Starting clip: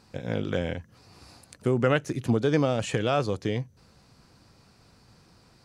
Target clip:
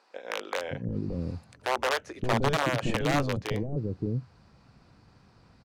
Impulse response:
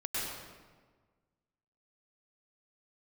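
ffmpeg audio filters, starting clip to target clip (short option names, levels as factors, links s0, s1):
-filter_complex "[0:a]aeval=exprs='(mod(6.31*val(0)+1,2)-1)/6.31':c=same,aemphasis=mode=reproduction:type=75fm,acrossover=split=420[s0][s1];[s0]adelay=570[s2];[s2][s1]amix=inputs=2:normalize=0"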